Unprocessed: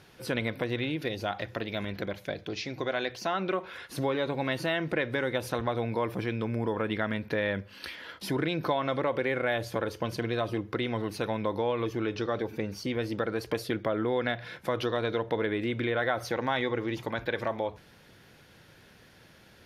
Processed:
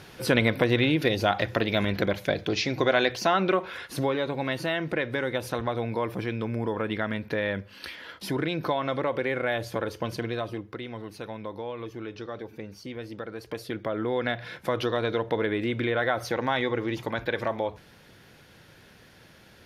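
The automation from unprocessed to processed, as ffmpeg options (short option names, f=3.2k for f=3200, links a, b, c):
-af "volume=17.5dB,afade=t=out:st=3:d=1.27:silence=0.421697,afade=t=out:st=10.14:d=0.64:silence=0.421697,afade=t=in:st=13.38:d=1.06:silence=0.354813"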